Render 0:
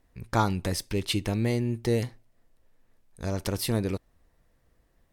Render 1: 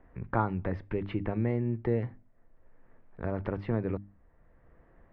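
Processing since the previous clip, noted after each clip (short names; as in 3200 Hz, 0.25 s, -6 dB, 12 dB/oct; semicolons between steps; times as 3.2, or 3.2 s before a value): LPF 1900 Hz 24 dB/oct; notches 50/100/150/200/250/300 Hz; three-band squash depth 40%; gain -2 dB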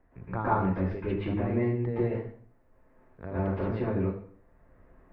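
reverb RT60 0.55 s, pre-delay 0.108 s, DRR -9 dB; gain -6.5 dB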